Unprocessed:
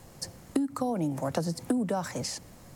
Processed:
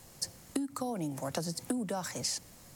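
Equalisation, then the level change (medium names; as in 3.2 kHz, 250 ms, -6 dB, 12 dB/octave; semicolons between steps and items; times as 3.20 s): treble shelf 2.2 kHz +9.5 dB; -6.5 dB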